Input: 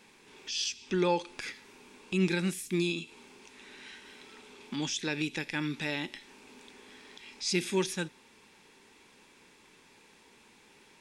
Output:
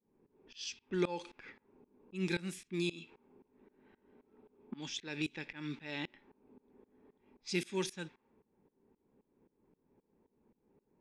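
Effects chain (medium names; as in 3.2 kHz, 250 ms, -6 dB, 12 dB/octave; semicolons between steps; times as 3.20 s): level-controlled noise filter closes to 420 Hz, open at -26.5 dBFS; tremolo saw up 3.8 Hz, depth 95%; trim -2.5 dB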